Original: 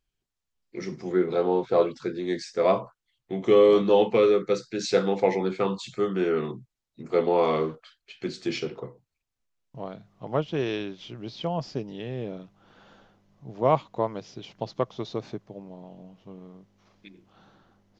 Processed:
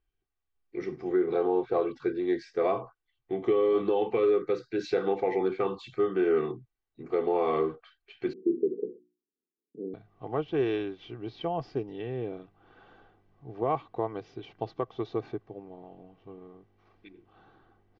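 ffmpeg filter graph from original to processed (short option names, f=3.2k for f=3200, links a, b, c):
-filter_complex "[0:a]asettb=1/sr,asplit=3[a][b][c];[a]atrim=end=8.334[d];[b]atrim=start=8.33:end=9.94,asetpts=PTS-STARTPTS,afade=t=in:d=0.004:c=qsin,afade=t=out:st=1.606:d=0.004:c=qsin,bandreject=f=60:t=h:w=6,bandreject=f=120:t=h:w=6,bandreject=f=180:t=h:w=6,bandreject=f=240:t=h:w=6,bandreject=f=300:t=h:w=6,bandreject=f=360:t=h:w=6,acontrast=69,asuperpass=centerf=280:order=12:qfactor=0.99[e];[c]atrim=start=9.936[f];[d][e]acrossfade=d=0.004:c1=hsin:c2=qsin[g];[g][f]acrossfade=d=0.004:c1=qsin:c2=hsin,lowpass=2.5k,aecho=1:1:2.6:0.6,alimiter=limit=-15dB:level=0:latency=1:release=104,volume=-2dB"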